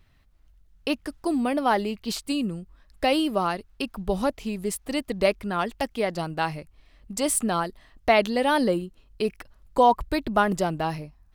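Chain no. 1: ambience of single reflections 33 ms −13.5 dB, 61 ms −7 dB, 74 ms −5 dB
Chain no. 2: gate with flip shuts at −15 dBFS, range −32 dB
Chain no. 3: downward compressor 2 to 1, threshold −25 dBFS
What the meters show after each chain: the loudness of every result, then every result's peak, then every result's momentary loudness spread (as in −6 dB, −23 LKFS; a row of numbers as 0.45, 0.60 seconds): −24.0, −34.5, −29.5 LKFS; −4.0, −12.0, −10.5 dBFS; 11, 17, 8 LU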